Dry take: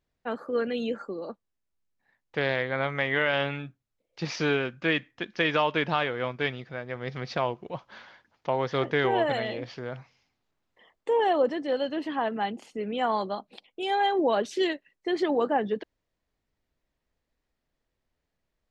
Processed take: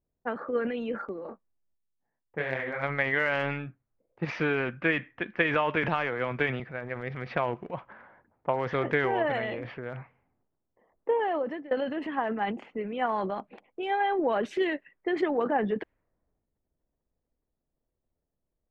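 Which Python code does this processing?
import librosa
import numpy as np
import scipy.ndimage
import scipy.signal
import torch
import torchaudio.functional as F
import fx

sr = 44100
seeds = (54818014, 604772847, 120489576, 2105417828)

y = fx.detune_double(x, sr, cents=fx.line((1.21, 56.0), (2.82, 38.0)), at=(1.21, 2.82), fade=0.02)
y = fx.band_squash(y, sr, depth_pct=70, at=(5.83, 6.6))
y = fx.edit(y, sr, fx.fade_out_to(start_s=11.1, length_s=0.61, floor_db=-17.5), tone=tone)
y = fx.env_lowpass(y, sr, base_hz=660.0, full_db=-26.5)
y = fx.high_shelf_res(y, sr, hz=3200.0, db=-13.0, q=1.5)
y = fx.transient(y, sr, attack_db=5, sustain_db=9)
y = y * 10.0 ** (-4.0 / 20.0)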